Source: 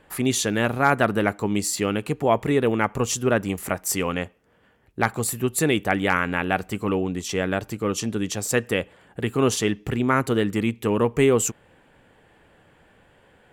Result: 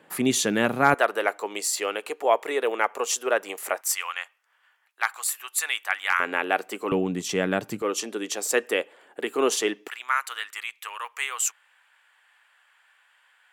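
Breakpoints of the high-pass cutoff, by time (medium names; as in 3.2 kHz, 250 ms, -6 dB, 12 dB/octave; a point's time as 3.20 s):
high-pass 24 dB/octave
150 Hz
from 0.94 s 450 Hz
from 3.81 s 1 kHz
from 6.20 s 330 Hz
from 6.92 s 140 Hz
from 7.82 s 330 Hz
from 9.88 s 1.1 kHz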